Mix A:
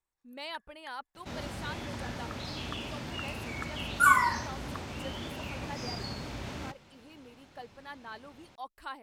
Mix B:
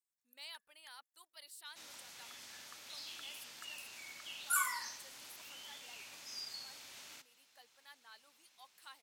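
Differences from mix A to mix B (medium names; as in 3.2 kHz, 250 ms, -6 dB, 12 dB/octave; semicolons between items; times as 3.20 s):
second sound: entry +0.50 s; master: add differentiator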